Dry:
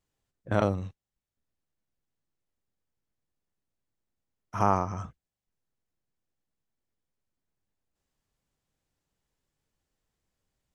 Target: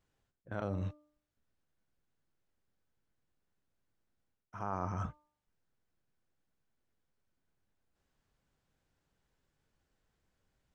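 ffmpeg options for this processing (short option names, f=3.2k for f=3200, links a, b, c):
-af "lowpass=f=3.8k:p=1,equalizer=f=1.5k:t=o:w=0.21:g=5,bandreject=f=299.7:t=h:w=4,bandreject=f=599.4:t=h:w=4,bandreject=f=899.1:t=h:w=4,bandreject=f=1.1988k:t=h:w=4,areverse,acompressor=threshold=-37dB:ratio=8,areverse,volume=3.5dB"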